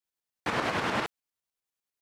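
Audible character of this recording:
tremolo saw up 10 Hz, depth 55%

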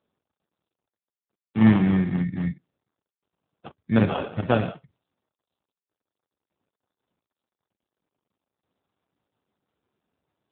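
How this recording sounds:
tremolo saw down 0.62 Hz, depth 35%
aliases and images of a low sample rate 2,000 Hz, jitter 0%
AMR narrowband

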